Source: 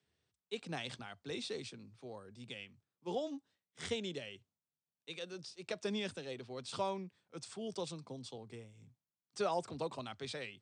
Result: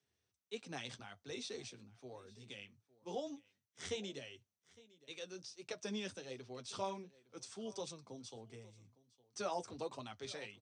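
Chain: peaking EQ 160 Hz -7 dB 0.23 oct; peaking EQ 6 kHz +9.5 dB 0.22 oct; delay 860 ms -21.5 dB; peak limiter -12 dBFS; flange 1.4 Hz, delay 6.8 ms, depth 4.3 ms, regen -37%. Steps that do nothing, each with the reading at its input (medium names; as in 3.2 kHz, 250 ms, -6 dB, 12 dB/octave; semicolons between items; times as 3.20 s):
peak limiter -12 dBFS: peak at its input -23.5 dBFS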